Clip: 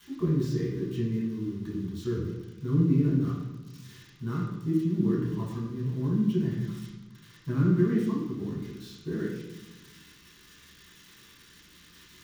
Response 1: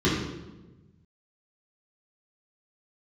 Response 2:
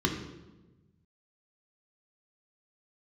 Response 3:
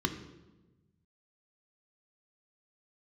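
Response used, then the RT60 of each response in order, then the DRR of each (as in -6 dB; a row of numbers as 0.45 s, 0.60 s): 1; 1.1 s, 1.1 s, 1.1 s; -8.5 dB, 1.0 dB, 5.5 dB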